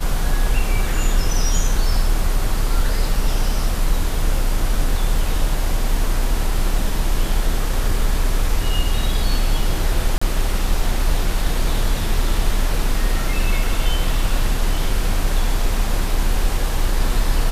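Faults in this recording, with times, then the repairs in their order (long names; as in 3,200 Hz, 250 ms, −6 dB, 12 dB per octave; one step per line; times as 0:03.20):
0:10.18–0:10.21: drop-out 35 ms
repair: repair the gap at 0:10.18, 35 ms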